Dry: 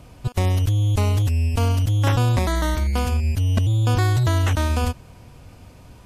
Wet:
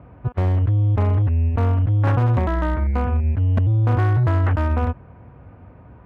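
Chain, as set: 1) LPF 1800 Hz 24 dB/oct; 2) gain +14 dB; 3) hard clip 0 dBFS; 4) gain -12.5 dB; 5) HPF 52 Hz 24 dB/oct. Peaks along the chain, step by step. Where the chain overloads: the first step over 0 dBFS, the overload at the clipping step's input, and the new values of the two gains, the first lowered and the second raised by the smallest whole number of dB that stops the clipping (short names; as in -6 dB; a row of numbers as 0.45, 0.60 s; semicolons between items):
-7.0, +7.0, 0.0, -12.5, -7.0 dBFS; step 2, 7.0 dB; step 2 +7 dB, step 4 -5.5 dB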